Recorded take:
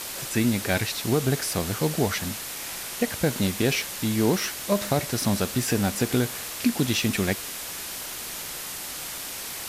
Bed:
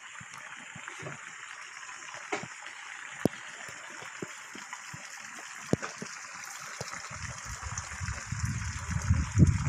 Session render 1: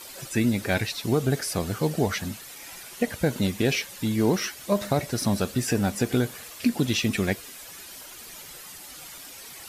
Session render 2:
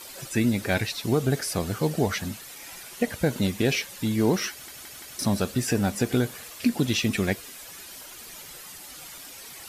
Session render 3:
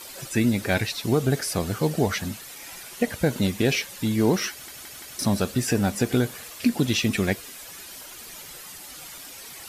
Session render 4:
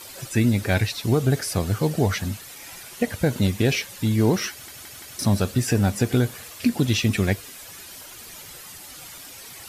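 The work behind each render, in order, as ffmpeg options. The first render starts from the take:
-af "afftdn=nr=11:nf=-35"
-filter_complex "[0:a]asplit=5[s0][s1][s2][s3][s4];[s0]atrim=end=4.682[s5];[s1]atrim=start=4.508:end=4.682[s6];[s2]atrim=start=4.508:end=4.682[s7];[s3]atrim=start=4.508:end=4.682[s8];[s4]atrim=start=5.188[s9];[s5][s6]acrossfade=d=0.004:c1=hsin:c2=hsin[s10];[s10][s7]acrossfade=d=0.004:c1=hsin:c2=hsin[s11];[s11][s8]acrossfade=d=0.004:c1=hsin:c2=hsin[s12];[s12][s9]acrossfade=d=0.004:c1=hsin:c2=hsin"
-af "volume=1.19"
-af "equalizer=f=100:w=1.9:g=8"

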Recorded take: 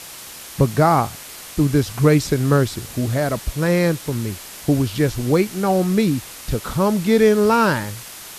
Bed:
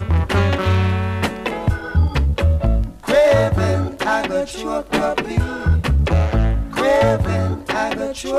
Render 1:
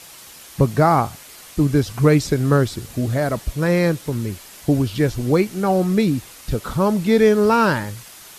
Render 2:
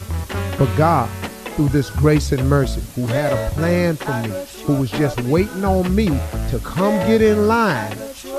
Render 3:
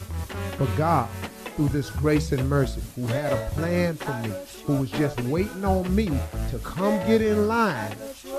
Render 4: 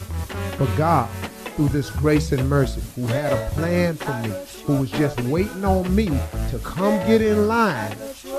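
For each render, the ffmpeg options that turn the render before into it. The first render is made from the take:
-af "afftdn=nr=6:nf=-37"
-filter_complex "[1:a]volume=0.422[s0];[0:a][s0]amix=inputs=2:normalize=0"
-af "tremolo=f=4.2:d=0.45,flanger=delay=3:depth=8.4:regen=-87:speed=0.28:shape=triangular"
-af "volume=1.5"

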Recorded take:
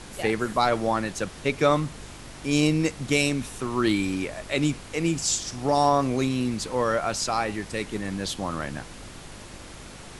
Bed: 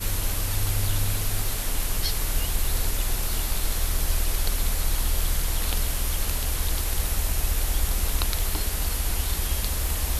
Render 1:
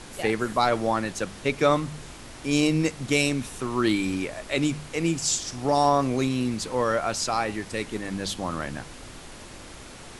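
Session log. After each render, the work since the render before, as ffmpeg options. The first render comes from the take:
-af "bandreject=f=50:t=h:w=4,bandreject=f=100:t=h:w=4,bandreject=f=150:t=h:w=4,bandreject=f=200:t=h:w=4"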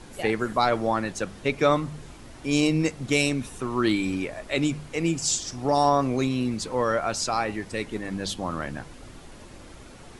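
-af "afftdn=nr=7:nf=-43"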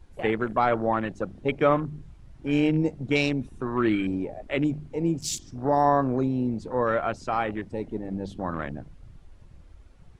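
-af "highshelf=f=5500:g=-8,afwtdn=0.0224"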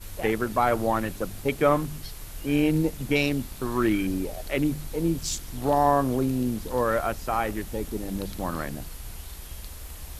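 -filter_complex "[1:a]volume=0.2[s0];[0:a][s0]amix=inputs=2:normalize=0"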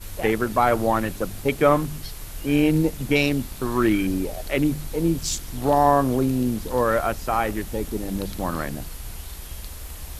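-af "volume=1.5"

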